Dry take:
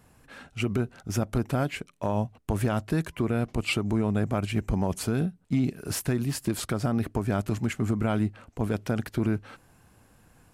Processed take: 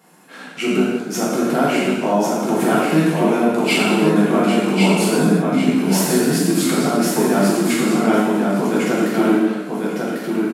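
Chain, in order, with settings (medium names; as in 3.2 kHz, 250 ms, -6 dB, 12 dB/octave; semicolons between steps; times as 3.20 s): elliptic high-pass 170 Hz, stop band 40 dB; feedback delay 1097 ms, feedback 16%, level -3.5 dB; gated-style reverb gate 400 ms falling, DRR -7 dB; trim +5 dB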